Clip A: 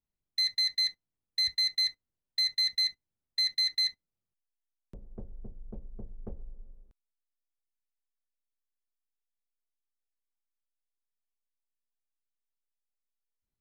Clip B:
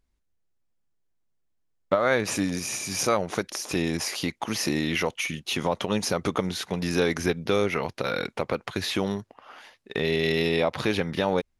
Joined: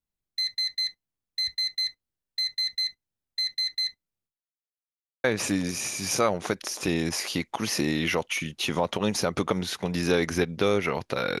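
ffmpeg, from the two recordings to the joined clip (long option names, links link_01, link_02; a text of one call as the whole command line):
ffmpeg -i cue0.wav -i cue1.wav -filter_complex "[0:a]apad=whole_dur=11.4,atrim=end=11.4,asplit=2[link_01][link_02];[link_01]atrim=end=4.74,asetpts=PTS-STARTPTS,afade=type=out:start_time=4.26:duration=0.48:curve=exp[link_03];[link_02]atrim=start=4.74:end=5.24,asetpts=PTS-STARTPTS,volume=0[link_04];[1:a]atrim=start=2.12:end=8.28,asetpts=PTS-STARTPTS,afade=type=in:duration=0.004:curve=hsin[link_05];[link_03][link_04][link_05]concat=n=3:v=0:a=1" out.wav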